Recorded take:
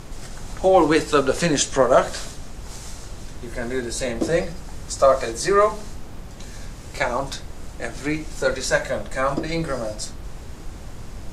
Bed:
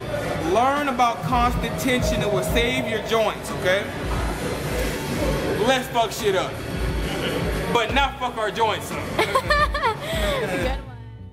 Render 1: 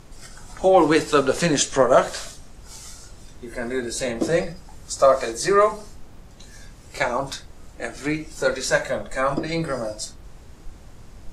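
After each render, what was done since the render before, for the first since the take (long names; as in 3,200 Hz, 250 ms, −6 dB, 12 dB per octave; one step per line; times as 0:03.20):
noise reduction from a noise print 8 dB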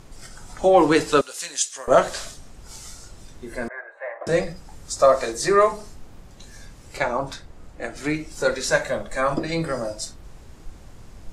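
0:01.21–0:01.88: first difference
0:03.68–0:04.27: elliptic band-pass filter 610–1,900 Hz, stop band 50 dB
0:06.97–0:07.96: high-shelf EQ 3,500 Hz −8 dB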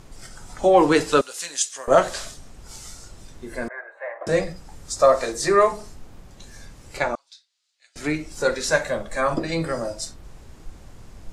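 0:07.15–0:07.96: four-pole ladder band-pass 4,900 Hz, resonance 40%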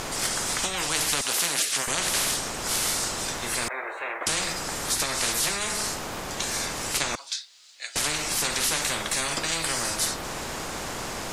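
downward compressor 3 to 1, threshold −19 dBFS, peak gain reduction 7.5 dB
every bin compressed towards the loudest bin 10 to 1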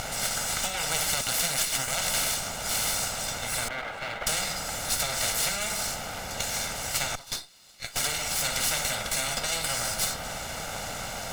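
lower of the sound and its delayed copy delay 1.4 ms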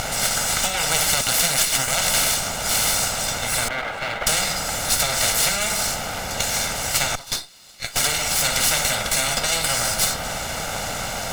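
level +7.5 dB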